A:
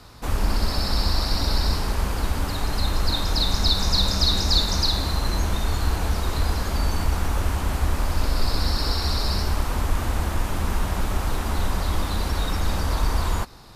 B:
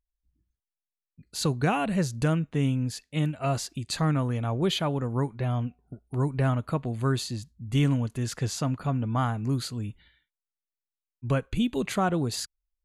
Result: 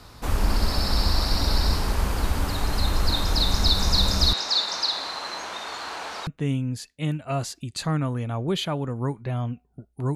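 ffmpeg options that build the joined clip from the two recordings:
-filter_complex "[0:a]asettb=1/sr,asplit=3[s0][s1][s2];[s0]atrim=end=4.334[s3];[s1]atrim=start=4.33:end=6.27,asetpts=PTS-STARTPTS,afade=t=in:d=0.004:c=qsin,afade=t=out:st=1.936:d=0.004:c=qsin,highpass=640,lowpass=5700[s4];[s2]atrim=start=6.266[s5];[s3][s4]acrossfade=d=0.004:c1=hsin:c2=qsin[s6];[s6][s5]acrossfade=d=0.004:c1=qsin:c2=hsin,apad=whole_dur=10.15,atrim=end=10.15,atrim=end=6.272[s7];[1:a]atrim=start=2.408:end=6.29[s8];[s7][s8]acrossfade=d=0.004:c1=hsin:c2=hsin"

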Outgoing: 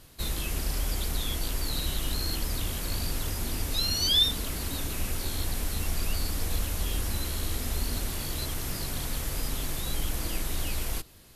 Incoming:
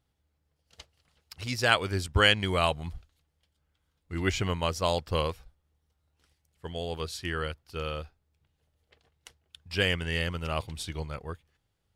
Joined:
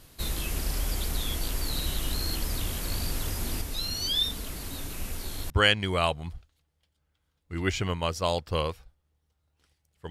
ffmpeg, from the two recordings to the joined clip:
-filter_complex "[0:a]asettb=1/sr,asplit=3[s0][s1][s2];[s0]atrim=end=3.614[s3];[s1]atrim=start=3.61:end=5.5,asetpts=PTS-STARTPTS,afade=t=in:d=0.004:c=qsin,afade=t=out:st=1.886:d=0.004:c=qsin,flanger=delay=4.2:depth=3.8:regen=-65:speed=1.3:shape=sinusoidal[s4];[s2]atrim=start=5.496[s5];[s3][s4]acrossfade=d=0.004:c1=hsin:c2=qsin[s6];[s6][s5]acrossfade=d=0.004:c1=qsin:c2=hsin,apad=whole_dur=10.1,atrim=end=10.1,atrim=end=5.502[s7];[1:a]atrim=start=2.098:end=6.7[s8];[s7][s8]acrossfade=d=0.004:c1=hsin:c2=hsin"

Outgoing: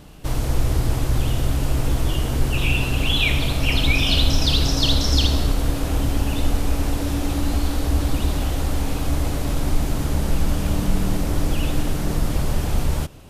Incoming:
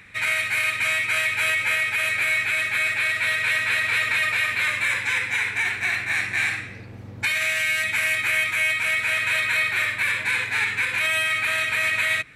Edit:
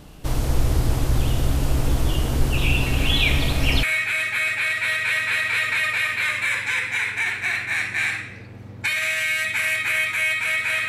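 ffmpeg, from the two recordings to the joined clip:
-filter_complex "[1:a]asplit=2[s0][s1];[0:a]apad=whole_dur=10.88,atrim=end=10.88,atrim=end=3.832[s2];[s1]atrim=start=2.218:end=9.27[s3];[s0]atrim=start=1.25:end=2.22,asetpts=PTS-STARTPTS,volume=0.224,afade=t=in:d=0.004:c=hsin,afade=t=out:st=0.966:d=0.004:c=hsin,adelay=2860[s4];[s2][s3]acrossfade=d=0.004:c1=hsin:c2=hsin[s5];[s5][s4]amix=inputs=2:normalize=0"

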